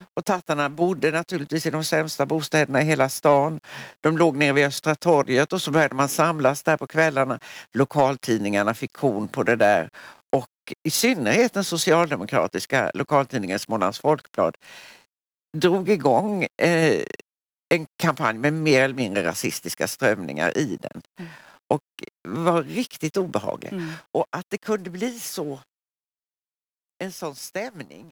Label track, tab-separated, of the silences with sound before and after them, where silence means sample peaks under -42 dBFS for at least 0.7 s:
25.630000	27.010000	silence